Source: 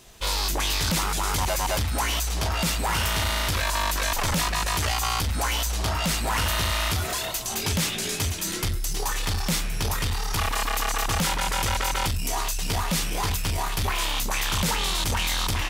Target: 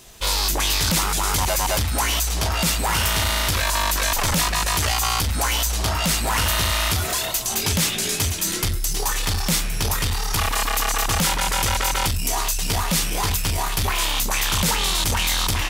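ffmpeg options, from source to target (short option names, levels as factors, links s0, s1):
-af "highshelf=f=5200:g=4.5,volume=1.41"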